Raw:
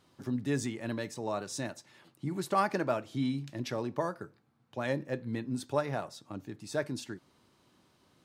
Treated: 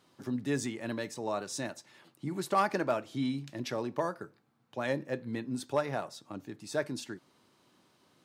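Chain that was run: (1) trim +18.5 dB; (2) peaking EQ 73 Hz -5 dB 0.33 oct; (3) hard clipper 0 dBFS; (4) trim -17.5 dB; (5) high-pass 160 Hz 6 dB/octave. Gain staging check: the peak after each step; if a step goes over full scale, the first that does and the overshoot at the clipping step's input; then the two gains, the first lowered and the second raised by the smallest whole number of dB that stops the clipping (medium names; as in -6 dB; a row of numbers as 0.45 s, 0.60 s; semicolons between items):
+3.0 dBFS, +3.0 dBFS, 0.0 dBFS, -17.5 dBFS, -16.5 dBFS; step 1, 3.0 dB; step 1 +15.5 dB, step 4 -14.5 dB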